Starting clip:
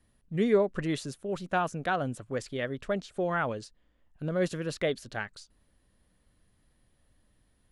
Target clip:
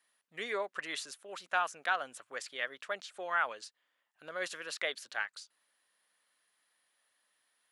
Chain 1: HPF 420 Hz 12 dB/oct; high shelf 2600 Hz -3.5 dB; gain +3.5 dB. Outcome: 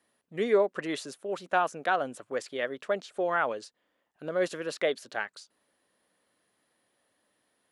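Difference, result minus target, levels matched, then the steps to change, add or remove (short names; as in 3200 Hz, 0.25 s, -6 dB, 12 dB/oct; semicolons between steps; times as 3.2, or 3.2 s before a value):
500 Hz band +7.0 dB
change: HPF 1200 Hz 12 dB/oct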